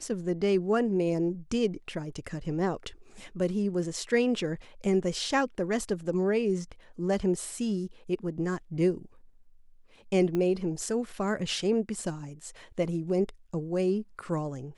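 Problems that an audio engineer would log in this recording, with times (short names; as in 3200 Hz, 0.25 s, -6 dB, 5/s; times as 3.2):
10.35 pop -19 dBFS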